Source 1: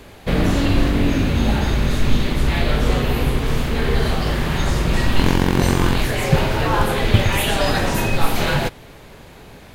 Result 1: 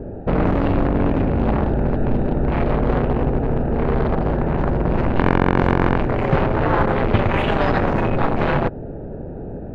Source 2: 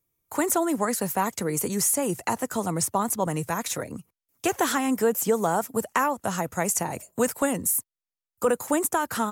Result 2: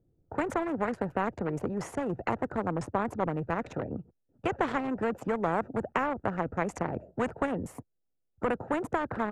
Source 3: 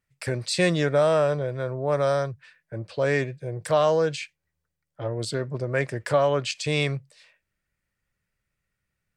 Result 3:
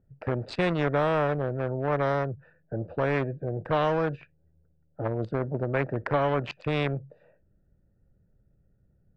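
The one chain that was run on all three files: Wiener smoothing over 41 samples; LPF 1000 Hz 12 dB/oct; spectral compressor 2:1

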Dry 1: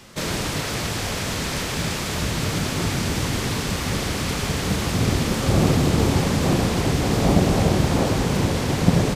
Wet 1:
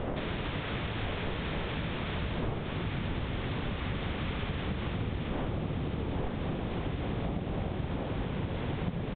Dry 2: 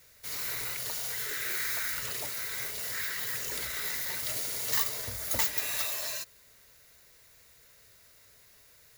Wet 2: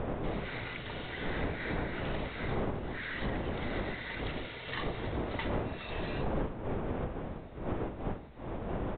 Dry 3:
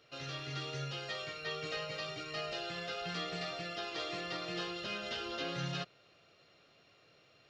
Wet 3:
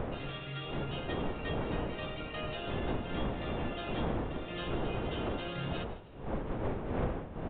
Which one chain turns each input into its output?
wind noise 520 Hz -29 dBFS; downsampling 8000 Hz; compressor 10:1, threshold -32 dBFS; low shelf 66 Hz +7.5 dB; frequency-shifting echo 0.157 s, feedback 34%, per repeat +47 Hz, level -17 dB

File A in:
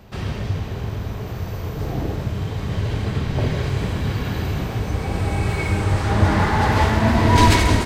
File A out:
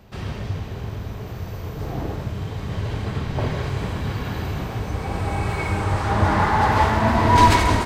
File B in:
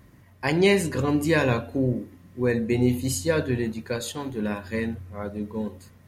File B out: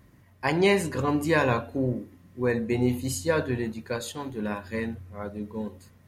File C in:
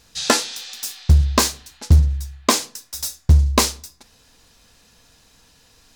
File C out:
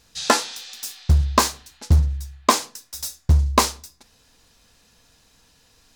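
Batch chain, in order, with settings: dynamic EQ 990 Hz, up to +7 dB, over -36 dBFS, Q 1; gain -3.5 dB

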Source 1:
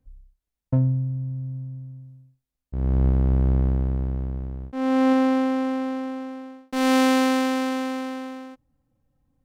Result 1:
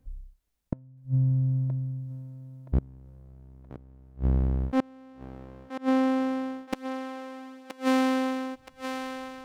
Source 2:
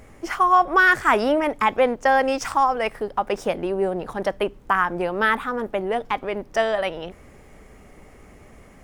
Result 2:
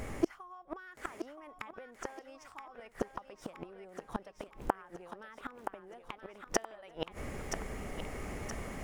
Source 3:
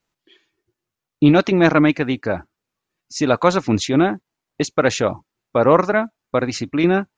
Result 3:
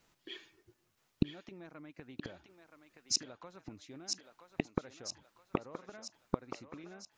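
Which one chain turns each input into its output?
compressor 16:1, threshold -21 dBFS; flipped gate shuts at -21 dBFS, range -32 dB; thinning echo 0.973 s, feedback 54%, high-pass 550 Hz, level -6 dB; gain +6 dB

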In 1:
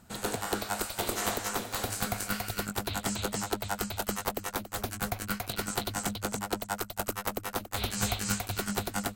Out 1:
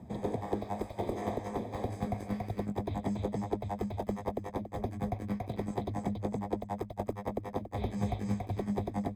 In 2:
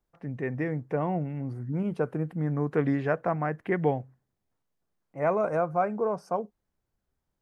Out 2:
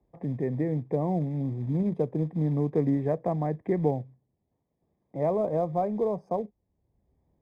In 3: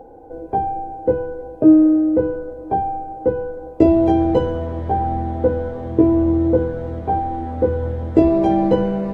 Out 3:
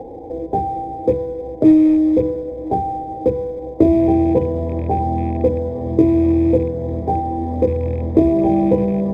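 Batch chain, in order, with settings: rattling part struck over -21 dBFS, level -20 dBFS; HPF 51 Hz 12 dB/oct; short-mantissa float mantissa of 2-bit; running mean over 31 samples; three-band squash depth 40%; gain +2.5 dB

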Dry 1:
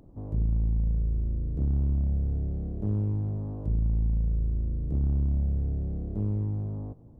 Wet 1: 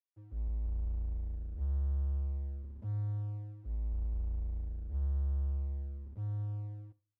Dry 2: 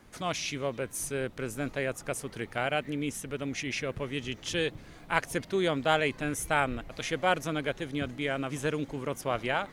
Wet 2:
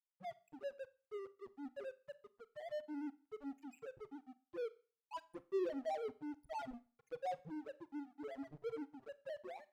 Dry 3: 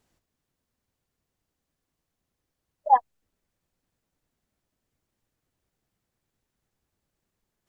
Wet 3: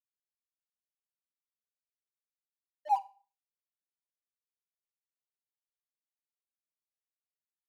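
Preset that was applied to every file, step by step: loudest bins only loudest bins 1; crossover distortion -46.5 dBFS; Schroeder reverb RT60 0.38 s, combs from 29 ms, DRR 16.5 dB; gain -2 dB

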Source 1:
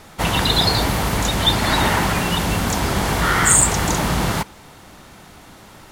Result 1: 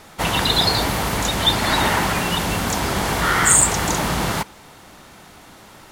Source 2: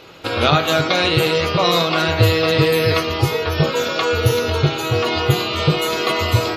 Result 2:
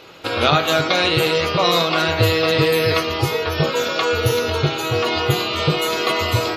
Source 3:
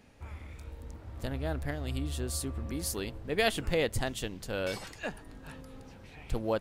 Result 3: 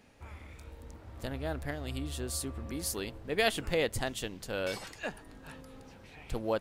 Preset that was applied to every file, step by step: low shelf 200 Hz -5 dB

